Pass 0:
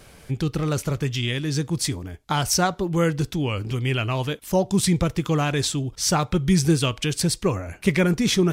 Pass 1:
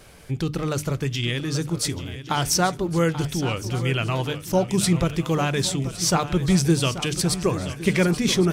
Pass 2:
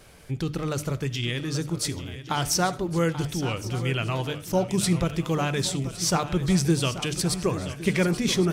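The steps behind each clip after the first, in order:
mains-hum notches 50/100/150/200/250/300 Hz; feedback echo with a long and a short gap by turns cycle 1,113 ms, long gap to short 3 to 1, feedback 43%, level −13 dB
convolution reverb RT60 0.45 s, pre-delay 35 ms, DRR 18.5 dB; level −3 dB

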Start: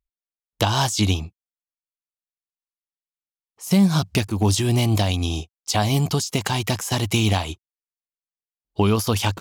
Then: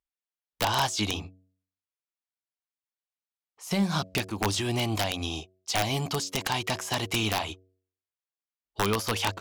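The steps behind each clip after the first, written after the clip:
hum removal 93.23 Hz, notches 7
mid-hump overdrive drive 13 dB, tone 3,200 Hz, clips at −4 dBFS
wrap-around overflow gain 8.5 dB
level −8 dB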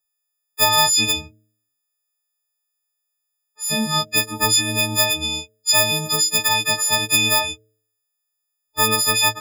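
every partial snapped to a pitch grid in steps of 6 semitones
level +2 dB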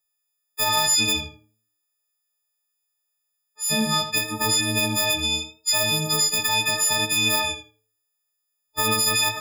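one-sided soft clipper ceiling −5.5 dBFS
brickwall limiter −10.5 dBFS, peak gain reduction 9 dB
tape delay 79 ms, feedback 21%, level −7.5 dB, low-pass 3,100 Hz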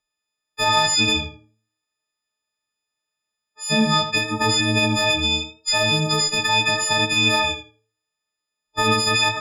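high-frequency loss of the air 100 metres
level +5.5 dB

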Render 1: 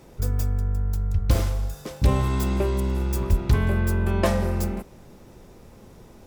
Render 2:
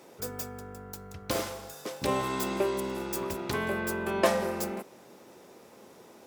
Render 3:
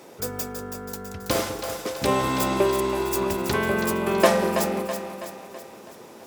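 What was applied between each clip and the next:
high-pass filter 320 Hz 12 dB per octave
echo with a time of its own for lows and highs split 450 Hz, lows 199 ms, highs 327 ms, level −8 dB; level +6.5 dB

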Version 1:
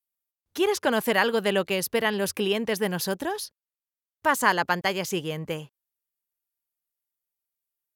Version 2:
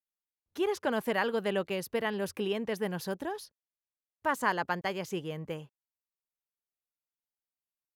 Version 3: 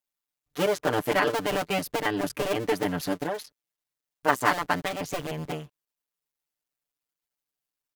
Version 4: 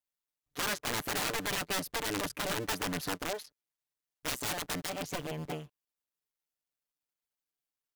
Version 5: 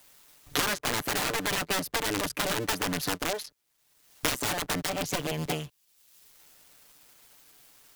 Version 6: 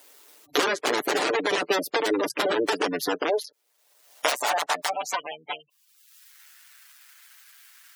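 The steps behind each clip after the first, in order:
high-shelf EQ 2,600 Hz −8 dB; level −6 dB
sub-harmonics by changed cycles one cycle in 2, muted; comb filter 6.8 ms, depth 91%; level +6 dB
wrap-around overflow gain 21.5 dB; level −5 dB
multiband upward and downward compressor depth 100%; level +4.5 dB
gate on every frequency bin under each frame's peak −15 dB strong; high-pass filter sweep 380 Hz → 1,600 Hz, 0:03.09–0:06.34; level +4 dB

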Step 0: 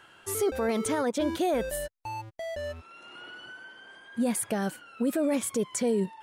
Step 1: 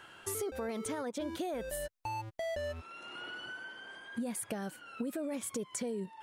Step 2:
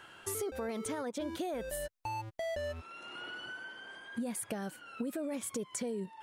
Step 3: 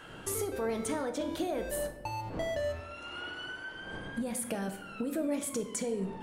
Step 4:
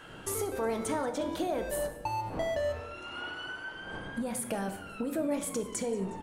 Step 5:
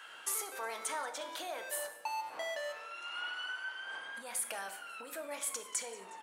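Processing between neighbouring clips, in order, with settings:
downward compressor, threshold −36 dBFS, peak gain reduction 12.5 dB; level +1 dB
no processing that can be heard
wind on the microphone 490 Hz −54 dBFS; rectangular room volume 320 cubic metres, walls mixed, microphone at 0.56 metres; level +2.5 dB
dynamic equaliser 920 Hz, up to +5 dB, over −48 dBFS, Q 1.3; echo with shifted repeats 181 ms, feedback 51%, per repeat −110 Hz, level −19 dB
high-pass filter 1,100 Hz 12 dB per octave; level +1 dB

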